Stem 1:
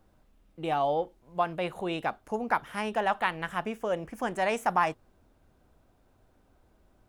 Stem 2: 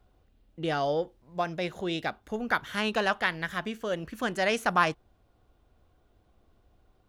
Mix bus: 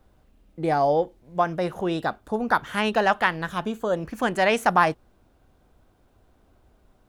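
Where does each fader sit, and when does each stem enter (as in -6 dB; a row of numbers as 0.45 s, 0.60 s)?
+2.0 dB, 0.0 dB; 0.00 s, 0.00 s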